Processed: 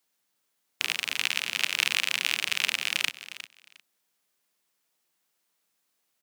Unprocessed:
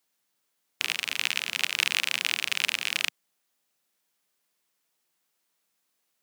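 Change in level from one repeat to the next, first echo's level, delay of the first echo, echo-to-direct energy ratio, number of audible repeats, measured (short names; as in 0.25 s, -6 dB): -14.5 dB, -13.5 dB, 0.357 s, -13.5 dB, 2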